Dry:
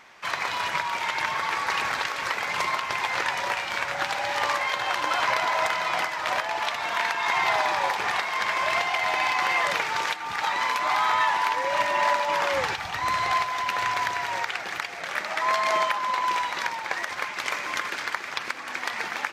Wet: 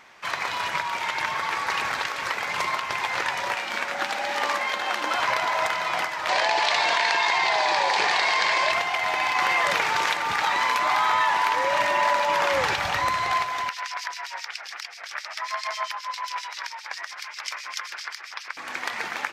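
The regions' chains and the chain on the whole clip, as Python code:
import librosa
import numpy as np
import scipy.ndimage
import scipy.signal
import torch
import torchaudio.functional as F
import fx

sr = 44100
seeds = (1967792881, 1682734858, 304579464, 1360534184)

y = fx.chain(x, sr, fx.low_shelf_res(hz=170.0, db=-7.5, q=3.0),
    fx.notch(hz=1000.0, q=17.0), at=(3.54, 5.16))
y = fx.chain(y, sr, fx.cabinet(low_hz=190.0, low_slope=12, high_hz=8700.0, hz=(240.0, 1300.0, 4400.0), db=(-9, -8, 7)),
    fx.env_flatten(amount_pct=100), at=(6.29, 8.72))
y = fx.chain(y, sr, fx.echo_single(ms=498, db=-15.5),
    fx.env_flatten(amount_pct=50), at=(9.35, 13.09))
y = fx.chain(y, sr, fx.highpass(hz=930.0, slope=12),
    fx.peak_eq(hz=5200.0, db=10.5, octaves=0.45),
    fx.harmonic_tremolo(hz=7.5, depth_pct=100, crossover_hz=2400.0), at=(13.69, 18.57))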